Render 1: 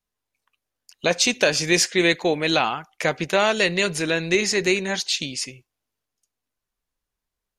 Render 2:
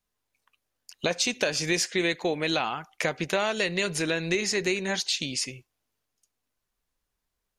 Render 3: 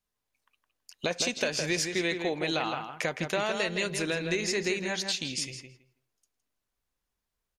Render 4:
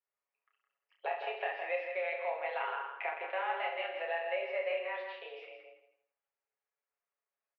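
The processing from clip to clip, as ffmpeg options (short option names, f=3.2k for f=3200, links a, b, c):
-af "acompressor=threshold=-29dB:ratio=2.5,volume=2dB"
-filter_complex "[0:a]asplit=2[a][b];[b]adelay=163,lowpass=f=3.3k:p=1,volume=-6dB,asplit=2[c][d];[d]adelay=163,lowpass=f=3.3k:p=1,volume=0.17,asplit=2[e][f];[f]adelay=163,lowpass=f=3.3k:p=1,volume=0.17[g];[a][c][e][g]amix=inputs=4:normalize=0,volume=-3.5dB"
-af "highpass=f=260:t=q:w=0.5412,highpass=f=260:t=q:w=1.307,lowpass=f=2.4k:t=q:w=0.5176,lowpass=f=2.4k:t=q:w=0.7071,lowpass=f=2.4k:t=q:w=1.932,afreqshift=180,aecho=1:1:7.2:0.55,aecho=1:1:30|69|119.7|185.6|271.3:0.631|0.398|0.251|0.158|0.1,volume=-8dB"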